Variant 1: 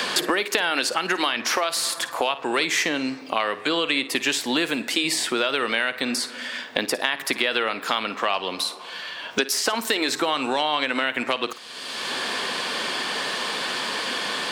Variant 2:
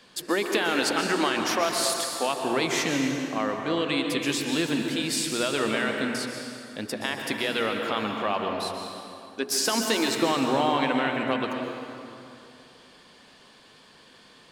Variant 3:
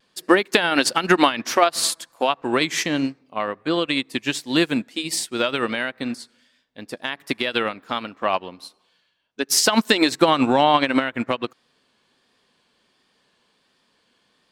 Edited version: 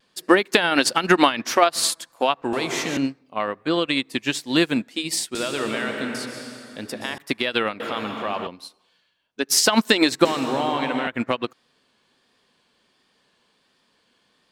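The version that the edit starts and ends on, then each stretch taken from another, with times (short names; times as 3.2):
3
2.53–2.97 from 2
5.35–7.18 from 2
7.8–8.47 from 2
10.25–11.07 from 2
not used: 1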